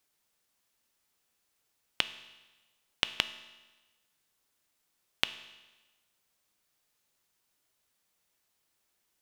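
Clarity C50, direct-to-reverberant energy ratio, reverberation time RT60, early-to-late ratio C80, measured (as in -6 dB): 14.0 dB, 11.5 dB, 1.2 s, 15.5 dB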